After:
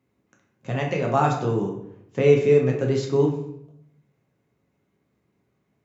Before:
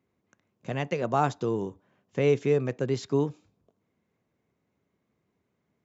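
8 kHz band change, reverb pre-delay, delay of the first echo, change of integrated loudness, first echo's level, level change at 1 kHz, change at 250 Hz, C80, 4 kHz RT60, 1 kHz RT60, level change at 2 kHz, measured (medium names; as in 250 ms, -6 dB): no reading, 7 ms, no echo, +6.0 dB, no echo, +4.5 dB, +5.0 dB, 9.0 dB, 0.55 s, 0.65 s, +5.0 dB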